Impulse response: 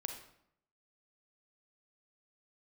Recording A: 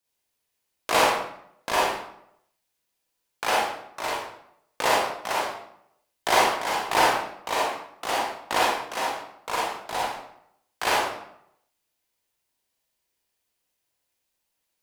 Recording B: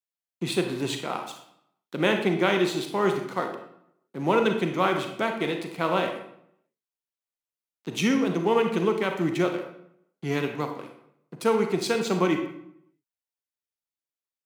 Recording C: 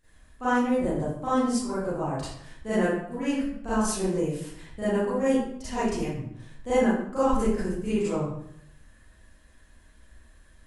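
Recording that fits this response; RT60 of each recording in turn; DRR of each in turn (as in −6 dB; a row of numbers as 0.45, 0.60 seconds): B; 0.70, 0.70, 0.70 seconds; −5.5, 4.5, −15.0 decibels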